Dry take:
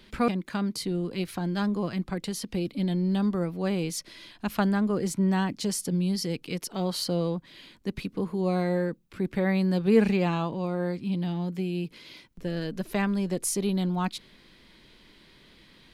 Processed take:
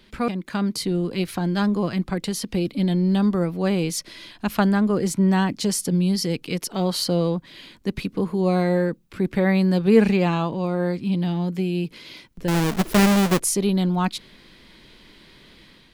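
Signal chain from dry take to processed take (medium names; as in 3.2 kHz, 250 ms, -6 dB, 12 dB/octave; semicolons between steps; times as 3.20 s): 12.48–13.41 s: square wave that keeps the level; level rider gain up to 6 dB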